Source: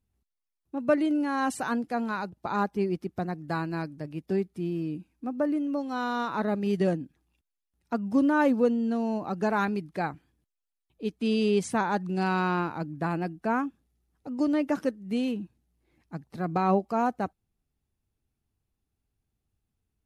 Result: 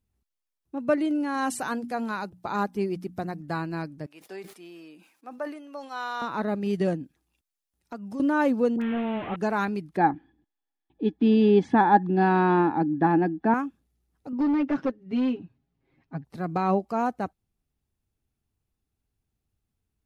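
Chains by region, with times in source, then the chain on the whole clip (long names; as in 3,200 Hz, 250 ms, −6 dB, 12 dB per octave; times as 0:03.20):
0:01.34–0:03.41: high-shelf EQ 6,300 Hz +6.5 dB + mains-hum notches 60/120/180/240/300 Hz
0:04.06–0:06.22: high-pass filter 730 Hz + level that may fall only so fast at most 93 dB per second
0:07.03–0:08.20: bass and treble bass −4 dB, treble +4 dB + downward compressor 2.5 to 1, threshold −36 dBFS
0:08.76–0:09.36: linear delta modulator 16 kbit/s, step −30 dBFS + all-pass dispersion highs, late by 57 ms, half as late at 1,200 Hz
0:09.97–0:13.54: high-frequency loss of the air 240 metres + hollow resonant body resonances 300/810/1,700/3,400 Hz, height 15 dB, ringing for 30 ms
0:14.32–0:16.25: comb filter 7.4 ms, depth 99% + hard clipping −20 dBFS + high-frequency loss of the air 210 metres
whole clip: no processing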